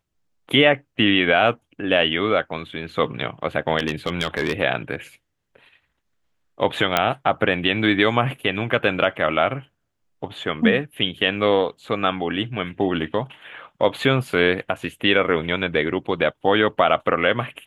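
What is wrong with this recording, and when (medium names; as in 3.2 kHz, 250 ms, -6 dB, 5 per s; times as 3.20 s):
3.78–4.52 s: clipped -15 dBFS
6.97 s: pop -3 dBFS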